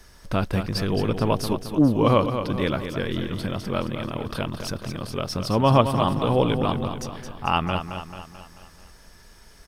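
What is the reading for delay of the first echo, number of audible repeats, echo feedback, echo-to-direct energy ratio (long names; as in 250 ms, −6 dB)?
219 ms, 5, 52%, −7.0 dB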